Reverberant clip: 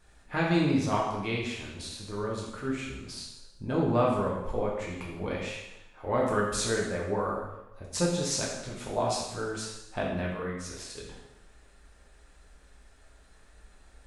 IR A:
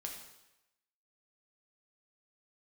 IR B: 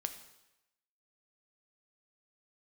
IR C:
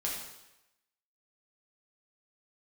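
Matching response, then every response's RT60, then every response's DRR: C; 0.95 s, 0.95 s, 0.95 s; 0.5 dB, 7.5 dB, -4.0 dB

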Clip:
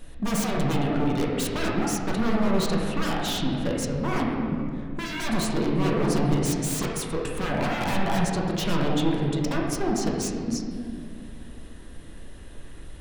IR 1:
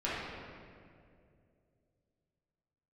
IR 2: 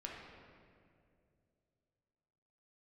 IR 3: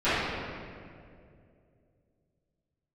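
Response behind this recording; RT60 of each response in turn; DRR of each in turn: 2; 2.4 s, 2.4 s, 2.4 s; -10.0 dB, -2.5 dB, -19.0 dB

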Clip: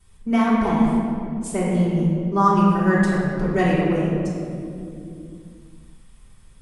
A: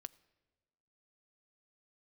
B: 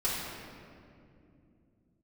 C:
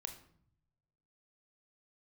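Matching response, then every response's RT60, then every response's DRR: B; 1.3 s, 2.5 s, 0.65 s; 15.5 dB, -9.5 dB, 5.5 dB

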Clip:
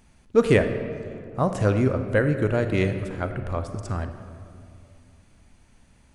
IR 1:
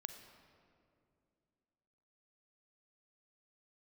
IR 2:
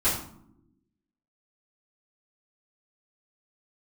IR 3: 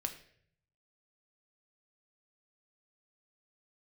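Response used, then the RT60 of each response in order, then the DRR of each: 1; 2.5 s, no single decay rate, 0.60 s; 8.0 dB, -14.5 dB, 4.5 dB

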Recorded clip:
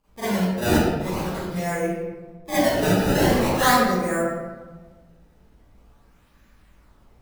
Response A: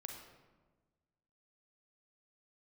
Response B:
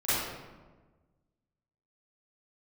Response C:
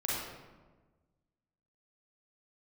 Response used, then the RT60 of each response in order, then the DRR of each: B; 1.3 s, 1.3 s, 1.3 s; 2.0 dB, -16.5 dB, -6.5 dB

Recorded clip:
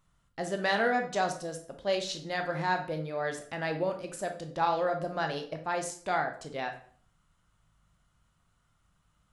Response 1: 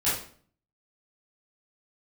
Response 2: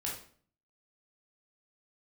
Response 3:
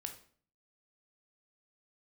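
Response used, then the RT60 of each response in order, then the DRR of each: 3; 0.50 s, 0.50 s, 0.50 s; -12.0 dB, -4.0 dB, 4.5 dB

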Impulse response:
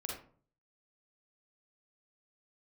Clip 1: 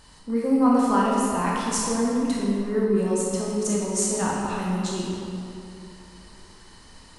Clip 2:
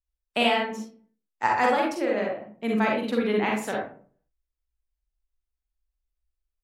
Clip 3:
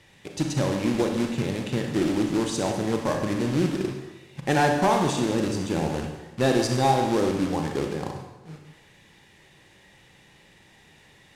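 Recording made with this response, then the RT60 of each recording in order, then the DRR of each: 2; 2.8 s, 0.45 s, 1.1 s; -5.0 dB, -2.0 dB, 2.5 dB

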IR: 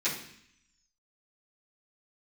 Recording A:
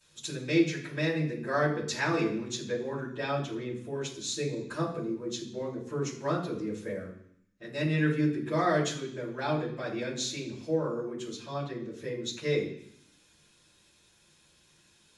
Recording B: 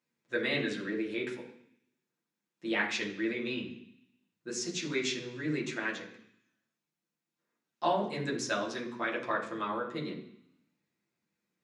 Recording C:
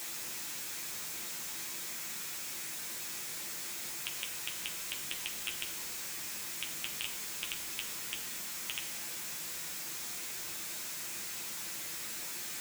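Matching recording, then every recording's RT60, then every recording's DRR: A; 0.65 s, 0.65 s, 0.65 s; -14.0 dB, -4.5 dB, 0.0 dB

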